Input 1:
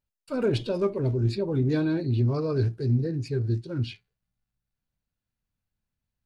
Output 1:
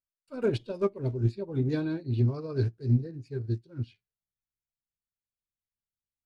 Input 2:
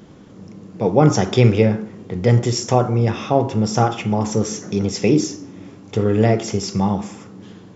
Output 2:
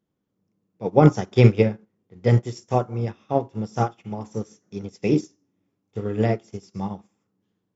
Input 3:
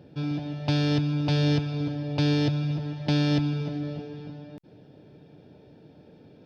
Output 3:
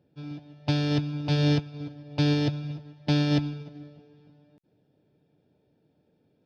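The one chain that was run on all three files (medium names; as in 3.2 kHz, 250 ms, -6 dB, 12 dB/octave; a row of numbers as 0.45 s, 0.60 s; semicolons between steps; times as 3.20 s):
upward expansion 2.5:1, over -33 dBFS; trim +1.5 dB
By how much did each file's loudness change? -3.5 LU, -4.0 LU, -0.5 LU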